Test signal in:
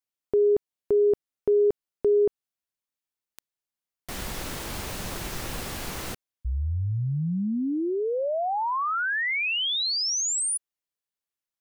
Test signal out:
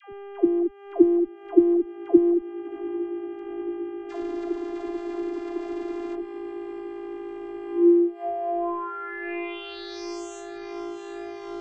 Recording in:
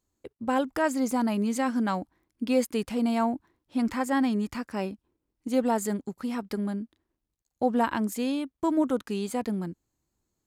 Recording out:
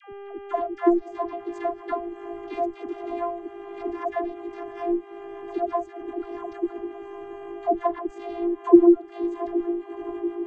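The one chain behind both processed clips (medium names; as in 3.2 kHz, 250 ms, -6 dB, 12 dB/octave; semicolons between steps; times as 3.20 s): added noise blue -63 dBFS; level rider gain up to 7 dB; vocoder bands 16, saw 345 Hz; on a send: echo that smears into a reverb 655 ms, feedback 79%, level -14.5 dB; on the sum: mains buzz 400 Hz, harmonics 8, -35 dBFS -7 dB/octave; in parallel at +0.5 dB: compression, threshold -29 dBFS; on the sum: transient shaper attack +11 dB, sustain -6 dB; tilt EQ -3 dB/octave; phase dispersion lows, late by 126 ms, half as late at 540 Hz; trim -14 dB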